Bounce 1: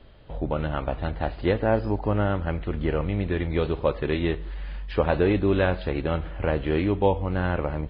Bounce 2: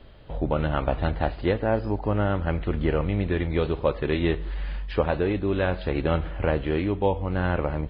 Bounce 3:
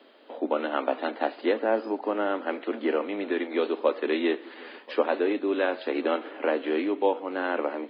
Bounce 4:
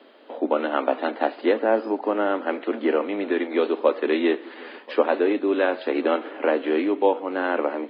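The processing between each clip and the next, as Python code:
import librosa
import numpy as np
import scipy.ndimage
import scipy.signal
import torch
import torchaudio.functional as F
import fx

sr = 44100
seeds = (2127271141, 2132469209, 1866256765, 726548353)

y1 = fx.rider(x, sr, range_db=4, speed_s=0.5)
y2 = scipy.signal.sosfilt(scipy.signal.butter(12, 240.0, 'highpass', fs=sr, output='sos'), y1)
y2 = y2 + 10.0 ** (-21.5 / 20.0) * np.pad(y2, (int(1034 * sr / 1000.0), 0))[:len(y2)]
y3 = fx.high_shelf(y2, sr, hz=3800.0, db=-6.0)
y3 = F.gain(torch.from_numpy(y3), 4.5).numpy()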